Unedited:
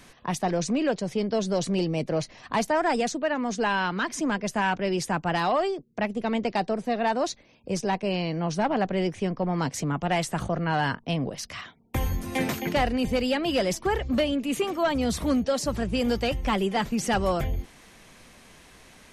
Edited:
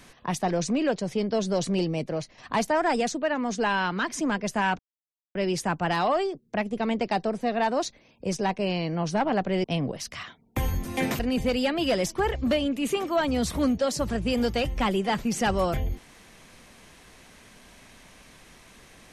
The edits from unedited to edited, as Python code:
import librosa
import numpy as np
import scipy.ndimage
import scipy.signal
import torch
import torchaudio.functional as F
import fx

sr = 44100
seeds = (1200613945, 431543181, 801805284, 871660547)

y = fx.edit(x, sr, fx.fade_out_to(start_s=1.82, length_s=0.56, floor_db=-7.0),
    fx.insert_silence(at_s=4.79, length_s=0.56),
    fx.cut(start_s=9.08, length_s=1.94),
    fx.cut(start_s=12.57, length_s=0.29), tone=tone)